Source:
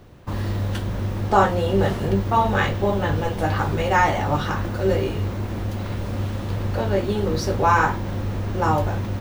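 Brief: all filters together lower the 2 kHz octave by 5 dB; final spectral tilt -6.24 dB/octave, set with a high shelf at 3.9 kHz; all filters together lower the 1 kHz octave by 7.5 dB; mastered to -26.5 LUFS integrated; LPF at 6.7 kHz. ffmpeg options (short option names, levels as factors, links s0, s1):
-af "lowpass=6700,equalizer=f=1000:t=o:g=-9,equalizer=f=2000:t=o:g=-3.5,highshelf=f=3900:g=3.5,volume=0.794"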